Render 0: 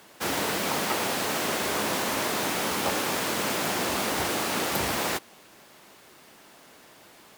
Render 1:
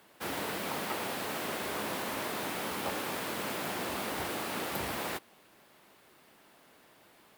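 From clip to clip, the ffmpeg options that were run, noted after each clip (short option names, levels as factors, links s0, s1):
-af "equalizer=f=6300:t=o:w=0.96:g=-6,volume=0.422"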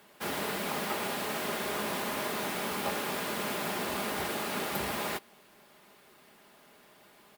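-af "aecho=1:1:4.9:0.37,volume=1.19"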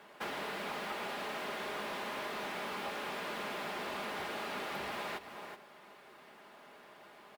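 -filter_complex "[0:a]aecho=1:1:375:0.158,asplit=2[s0][s1];[s1]highpass=f=720:p=1,volume=3.55,asoftclip=type=tanh:threshold=0.106[s2];[s0][s2]amix=inputs=2:normalize=0,lowpass=f=1400:p=1,volume=0.501,acrossover=split=2200|5200[s3][s4][s5];[s3]acompressor=threshold=0.00891:ratio=4[s6];[s4]acompressor=threshold=0.00447:ratio=4[s7];[s5]acompressor=threshold=0.00126:ratio=4[s8];[s6][s7][s8]amix=inputs=3:normalize=0,volume=1.12"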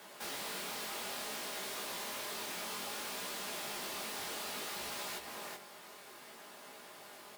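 -filter_complex "[0:a]acrossover=split=4900[s0][s1];[s0]alimiter=level_in=5.96:limit=0.0631:level=0:latency=1:release=18,volume=0.168[s2];[s1]aeval=exprs='0.00708*sin(PI/2*3.55*val(0)/0.00708)':c=same[s3];[s2][s3]amix=inputs=2:normalize=0,flanger=delay=15.5:depth=7.3:speed=0.6,volume=1.68"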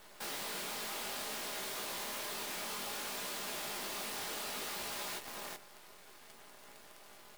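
-af "acrusher=bits=8:dc=4:mix=0:aa=0.000001"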